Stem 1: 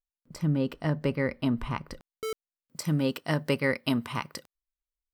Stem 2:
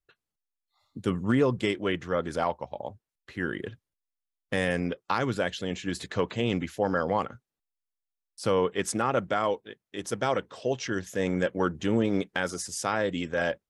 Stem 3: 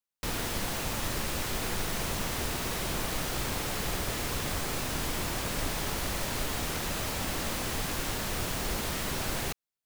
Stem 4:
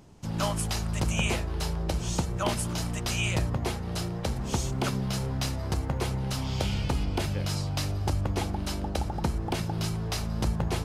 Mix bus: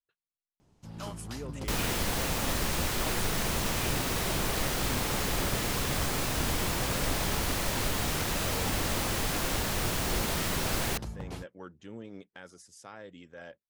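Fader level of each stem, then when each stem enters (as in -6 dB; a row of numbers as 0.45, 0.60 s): -18.0, -19.0, +2.0, -12.0 dB; 1.00, 0.00, 1.45, 0.60 s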